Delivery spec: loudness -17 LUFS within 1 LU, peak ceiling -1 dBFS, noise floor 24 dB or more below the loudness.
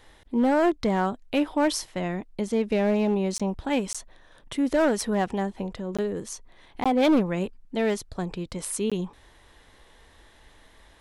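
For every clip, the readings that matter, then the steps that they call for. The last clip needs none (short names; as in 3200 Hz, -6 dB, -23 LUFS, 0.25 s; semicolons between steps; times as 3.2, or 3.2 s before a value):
clipped 1.0%; flat tops at -16.0 dBFS; dropouts 5; longest dropout 16 ms; loudness -26.5 LUFS; peak -16.0 dBFS; loudness target -17.0 LUFS
-> clip repair -16 dBFS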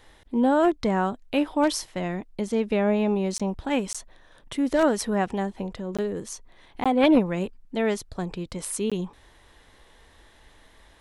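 clipped 0.0%; dropouts 5; longest dropout 16 ms
-> interpolate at 3.38/3.93/5.97/6.84/8.9, 16 ms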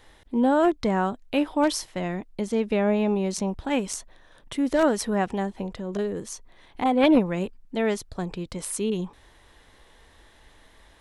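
dropouts 0; loudness -25.5 LUFS; peak -7.0 dBFS; loudness target -17.0 LUFS
-> gain +8.5 dB; limiter -1 dBFS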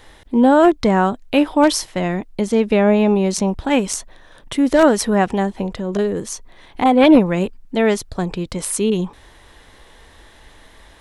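loudness -17.0 LUFS; peak -1.0 dBFS; noise floor -47 dBFS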